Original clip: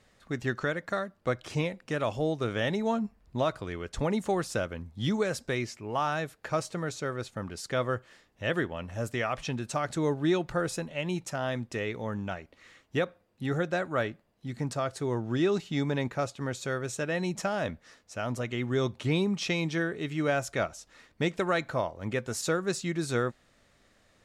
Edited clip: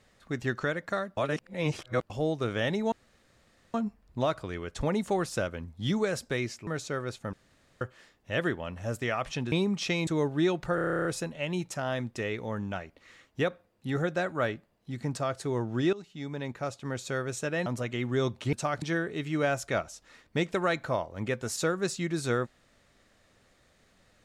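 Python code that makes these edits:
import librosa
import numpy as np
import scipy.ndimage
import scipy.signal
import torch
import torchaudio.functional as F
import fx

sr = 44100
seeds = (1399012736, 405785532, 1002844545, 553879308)

y = fx.edit(x, sr, fx.reverse_span(start_s=1.17, length_s=0.93),
    fx.insert_room_tone(at_s=2.92, length_s=0.82),
    fx.cut(start_s=5.85, length_s=0.94),
    fx.room_tone_fill(start_s=7.45, length_s=0.48),
    fx.swap(start_s=9.64, length_s=0.29, other_s=19.12, other_length_s=0.55),
    fx.stutter(start_s=10.61, slice_s=0.03, count=11),
    fx.fade_in_from(start_s=15.49, length_s=1.16, floor_db=-17.5),
    fx.cut(start_s=17.22, length_s=1.03), tone=tone)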